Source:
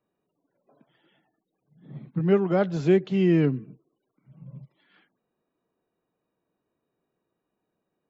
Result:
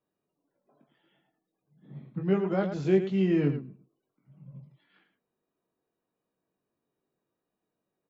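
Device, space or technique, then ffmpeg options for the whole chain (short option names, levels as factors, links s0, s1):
slapback doubling: -filter_complex "[0:a]asplit=3[s0][s1][s2];[s1]adelay=21,volume=0.562[s3];[s2]adelay=108,volume=0.355[s4];[s0][s3][s4]amix=inputs=3:normalize=0,volume=0.501"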